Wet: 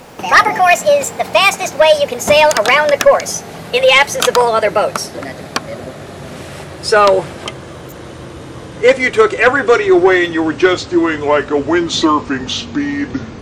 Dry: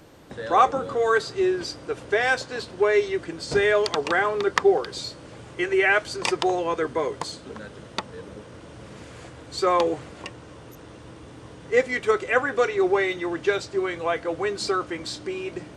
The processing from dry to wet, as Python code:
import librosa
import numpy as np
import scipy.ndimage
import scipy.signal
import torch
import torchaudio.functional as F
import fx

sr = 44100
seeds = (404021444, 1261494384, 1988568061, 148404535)

y = fx.speed_glide(x, sr, from_pct=162, to_pct=73)
y = fx.fold_sine(y, sr, drive_db=9, ceiling_db=-1.5)